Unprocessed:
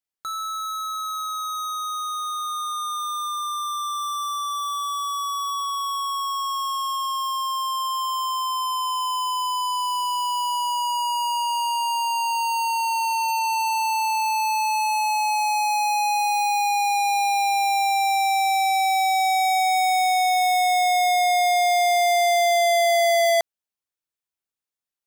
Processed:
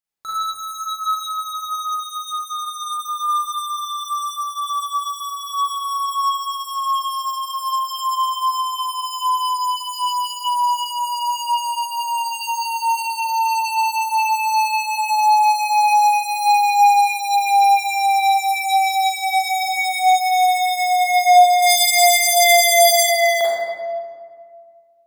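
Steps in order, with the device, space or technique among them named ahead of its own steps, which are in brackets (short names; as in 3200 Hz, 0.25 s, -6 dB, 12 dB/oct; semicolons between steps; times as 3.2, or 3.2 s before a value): reverb removal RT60 0.97 s; 21.62–23.03 bell 12000 Hz +15 dB 2.7 oct; stairwell (reverb RT60 1.9 s, pre-delay 33 ms, DRR -8.5 dB); gain -2 dB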